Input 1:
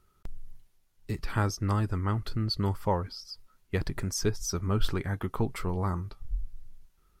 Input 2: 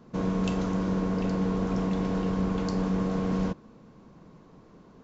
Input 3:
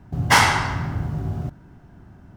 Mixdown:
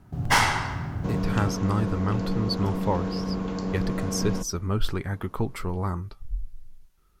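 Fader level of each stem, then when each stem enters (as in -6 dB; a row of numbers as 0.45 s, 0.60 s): +1.5 dB, -1.5 dB, -5.5 dB; 0.00 s, 0.90 s, 0.00 s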